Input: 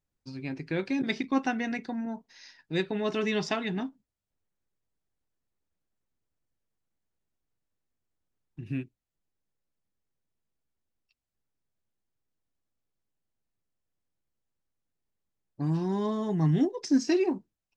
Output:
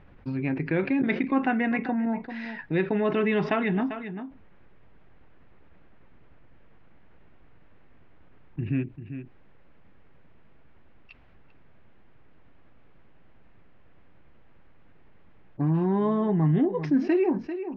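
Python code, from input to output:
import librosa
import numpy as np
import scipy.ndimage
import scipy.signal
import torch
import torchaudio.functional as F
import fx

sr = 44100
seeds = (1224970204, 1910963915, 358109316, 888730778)

p1 = scipy.signal.sosfilt(scipy.signal.butter(4, 2500.0, 'lowpass', fs=sr, output='sos'), x)
p2 = p1 + fx.echo_single(p1, sr, ms=394, db=-20.5, dry=0)
y = fx.env_flatten(p2, sr, amount_pct=50)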